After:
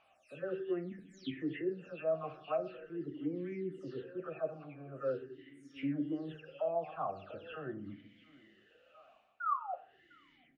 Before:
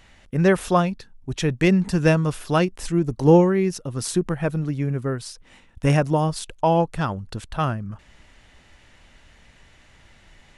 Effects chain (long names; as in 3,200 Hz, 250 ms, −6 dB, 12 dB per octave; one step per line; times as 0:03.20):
every frequency bin delayed by itself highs early, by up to 294 ms
noise gate −41 dBFS, range −6 dB
sound drawn into the spectrogram fall, 0:09.40–0:09.74, 700–1,500 Hz −15 dBFS
reversed playback
downward compressor 10 to 1, threshold −29 dBFS, peak gain reduction 20 dB
reversed playback
treble cut that deepens with the level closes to 2,300 Hz, closed at −32 dBFS
double-tracking delay 13 ms −11 dB
feedback echo with a high-pass in the loop 702 ms, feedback 42%, high-pass 410 Hz, level −15.5 dB
on a send at −9 dB: convolution reverb RT60 0.70 s, pre-delay 4 ms
on the sum: formant filter swept between two vowels a-i 0.43 Hz
level +6 dB